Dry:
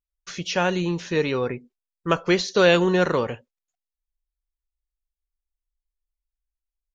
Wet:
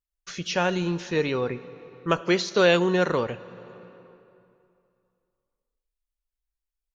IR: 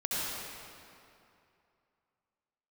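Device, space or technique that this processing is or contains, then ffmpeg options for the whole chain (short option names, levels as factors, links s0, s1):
compressed reverb return: -filter_complex "[0:a]asplit=2[s0][s1];[1:a]atrim=start_sample=2205[s2];[s1][s2]afir=irnorm=-1:irlink=0,acompressor=threshold=0.141:ratio=6,volume=0.112[s3];[s0][s3]amix=inputs=2:normalize=0,asettb=1/sr,asplit=3[s4][s5][s6];[s4]atrim=end=2.214[s7];[s5]atrim=start=2.21:end=3.1,asetpts=PTS-STARTPTS,afade=t=in:d=0.004:c=qsin,afade=t=out:st=0.886:d=0.004:c=qsin,highpass=130[s8];[s6]atrim=start=3.096[s9];[s7][s8]acrossfade=d=0.004:c1=hsin:c2=qsin[s10];[s10][s9]acrossfade=d=0.004:c1=qsin:c2=hsin,volume=0.75"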